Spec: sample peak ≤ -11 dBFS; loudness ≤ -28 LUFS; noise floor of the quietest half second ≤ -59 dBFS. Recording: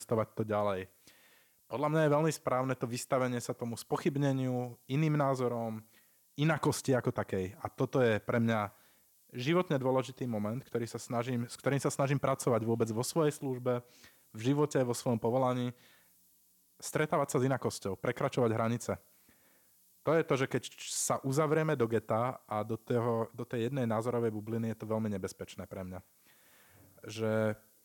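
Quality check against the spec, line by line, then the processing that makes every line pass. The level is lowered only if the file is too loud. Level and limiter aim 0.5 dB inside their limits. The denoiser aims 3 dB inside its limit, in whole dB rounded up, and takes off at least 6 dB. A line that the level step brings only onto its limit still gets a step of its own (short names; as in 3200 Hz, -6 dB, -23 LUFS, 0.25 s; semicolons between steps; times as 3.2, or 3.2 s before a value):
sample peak -19.0 dBFS: OK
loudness -33.0 LUFS: OK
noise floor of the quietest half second -68 dBFS: OK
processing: none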